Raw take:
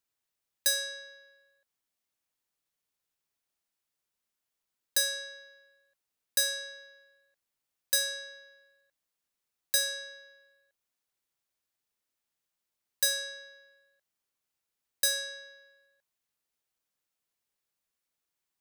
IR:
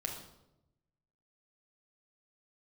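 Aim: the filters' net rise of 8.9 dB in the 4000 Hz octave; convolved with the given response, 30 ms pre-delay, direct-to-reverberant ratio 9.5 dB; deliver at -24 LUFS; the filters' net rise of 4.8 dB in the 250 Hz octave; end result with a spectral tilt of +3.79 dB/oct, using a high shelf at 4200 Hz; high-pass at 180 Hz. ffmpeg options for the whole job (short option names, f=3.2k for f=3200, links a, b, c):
-filter_complex "[0:a]highpass=180,equalizer=f=250:t=o:g=7.5,equalizer=f=4k:t=o:g=7.5,highshelf=f=4.2k:g=4,asplit=2[a][b];[1:a]atrim=start_sample=2205,adelay=30[c];[b][c]afir=irnorm=-1:irlink=0,volume=-10.5dB[d];[a][d]amix=inputs=2:normalize=0"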